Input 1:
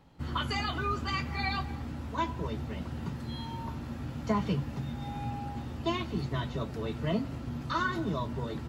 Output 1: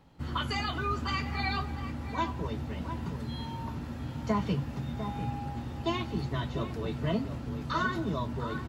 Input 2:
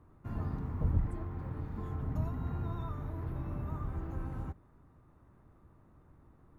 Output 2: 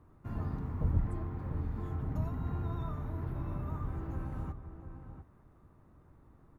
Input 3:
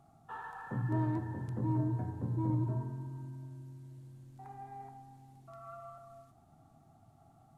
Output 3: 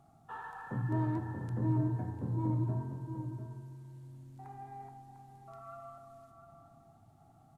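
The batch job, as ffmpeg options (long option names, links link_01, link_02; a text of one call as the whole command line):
ffmpeg -i in.wav -filter_complex "[0:a]asplit=2[link_01][link_02];[link_02]adelay=699.7,volume=-9dB,highshelf=frequency=4000:gain=-15.7[link_03];[link_01][link_03]amix=inputs=2:normalize=0" out.wav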